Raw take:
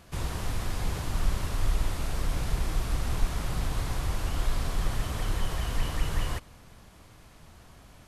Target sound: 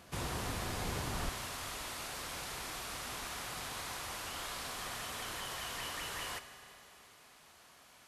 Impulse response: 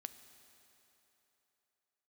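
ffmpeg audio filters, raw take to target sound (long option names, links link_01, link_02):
-filter_complex "[0:a]asetnsamples=nb_out_samples=441:pad=0,asendcmd='1.29 highpass f 1100',highpass=frequency=180:poles=1[link_01];[1:a]atrim=start_sample=2205[link_02];[link_01][link_02]afir=irnorm=-1:irlink=0,volume=4dB"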